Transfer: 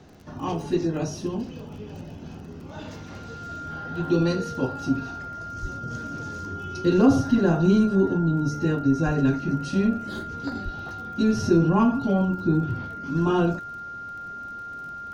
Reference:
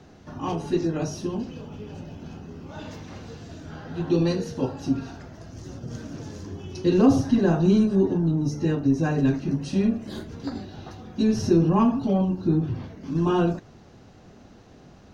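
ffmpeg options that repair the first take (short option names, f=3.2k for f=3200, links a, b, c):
-filter_complex "[0:a]adeclick=t=4,bandreject=f=1.4k:w=30,asplit=3[a][b][c];[a]afade=t=out:st=5.61:d=0.02[d];[b]highpass=f=140:w=0.5412,highpass=f=140:w=1.3066,afade=t=in:st=5.61:d=0.02,afade=t=out:st=5.73:d=0.02[e];[c]afade=t=in:st=5.73:d=0.02[f];[d][e][f]amix=inputs=3:normalize=0,asplit=3[g][h][i];[g]afade=t=out:st=9.05:d=0.02[j];[h]highpass=f=140:w=0.5412,highpass=f=140:w=1.3066,afade=t=in:st=9.05:d=0.02,afade=t=out:st=9.17:d=0.02[k];[i]afade=t=in:st=9.17:d=0.02[l];[j][k][l]amix=inputs=3:normalize=0,asplit=3[m][n][o];[m]afade=t=out:st=10.64:d=0.02[p];[n]highpass=f=140:w=0.5412,highpass=f=140:w=1.3066,afade=t=in:st=10.64:d=0.02,afade=t=out:st=10.76:d=0.02[q];[o]afade=t=in:st=10.76:d=0.02[r];[p][q][r]amix=inputs=3:normalize=0"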